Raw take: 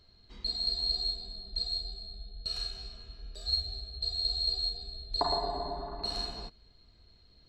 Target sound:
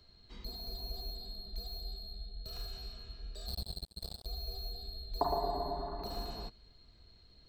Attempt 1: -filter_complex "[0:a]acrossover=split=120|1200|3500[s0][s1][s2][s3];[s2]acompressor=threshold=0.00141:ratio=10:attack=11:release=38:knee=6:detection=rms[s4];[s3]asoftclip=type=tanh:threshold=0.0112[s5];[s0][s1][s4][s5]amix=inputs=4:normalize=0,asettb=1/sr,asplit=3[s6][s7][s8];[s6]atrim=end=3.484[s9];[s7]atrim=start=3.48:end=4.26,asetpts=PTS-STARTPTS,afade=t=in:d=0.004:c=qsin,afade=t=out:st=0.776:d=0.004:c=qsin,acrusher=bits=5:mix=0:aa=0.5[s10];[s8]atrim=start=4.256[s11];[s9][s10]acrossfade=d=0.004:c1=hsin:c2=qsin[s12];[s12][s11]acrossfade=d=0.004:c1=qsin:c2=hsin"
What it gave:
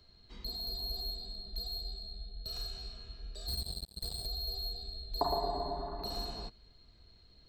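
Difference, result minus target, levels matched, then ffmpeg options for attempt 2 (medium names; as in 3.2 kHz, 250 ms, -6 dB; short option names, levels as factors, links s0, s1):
saturation: distortion -5 dB
-filter_complex "[0:a]acrossover=split=120|1200|3500[s0][s1][s2][s3];[s2]acompressor=threshold=0.00141:ratio=10:attack=11:release=38:knee=6:detection=rms[s4];[s3]asoftclip=type=tanh:threshold=0.00355[s5];[s0][s1][s4][s5]amix=inputs=4:normalize=0,asettb=1/sr,asplit=3[s6][s7][s8];[s6]atrim=end=3.484[s9];[s7]atrim=start=3.48:end=4.26,asetpts=PTS-STARTPTS,afade=t=in:d=0.004:c=qsin,afade=t=out:st=0.776:d=0.004:c=qsin,acrusher=bits=5:mix=0:aa=0.5[s10];[s8]atrim=start=4.256[s11];[s9][s10]acrossfade=d=0.004:c1=hsin:c2=qsin[s12];[s12][s11]acrossfade=d=0.004:c1=qsin:c2=hsin"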